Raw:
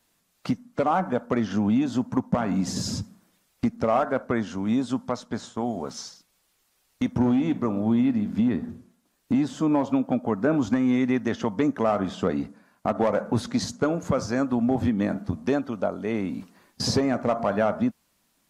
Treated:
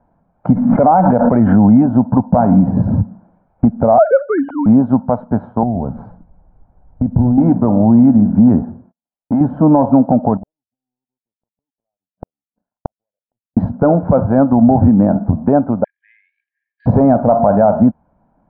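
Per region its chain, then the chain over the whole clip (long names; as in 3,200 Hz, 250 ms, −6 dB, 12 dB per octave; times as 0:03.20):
0:00.53–0:01.83: parametric band 2,000 Hz +9.5 dB 0.34 octaves + background raised ahead of every attack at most 47 dB per second
0:03.98–0:04.66: three sine waves on the formant tracks + high-shelf EQ 2,200 Hz +10 dB
0:05.63–0:07.38: RIAA equalisation playback + downward compressor 2 to 1, threshold −37 dBFS
0:08.62–0:09.41: noise gate −58 dBFS, range −36 dB + low-shelf EQ 350 Hz −11 dB
0:10.37–0:13.57: spectral envelope exaggerated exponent 2 + gate with flip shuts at −25 dBFS, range −40 dB + power curve on the samples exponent 2
0:15.84–0:16.86: transient designer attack −2 dB, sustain −9 dB + linear-phase brick-wall band-pass 1,600–4,700 Hz
whole clip: low-pass filter 1,000 Hz 24 dB per octave; comb filter 1.3 ms, depth 50%; boost into a limiter +16.5 dB; level −1 dB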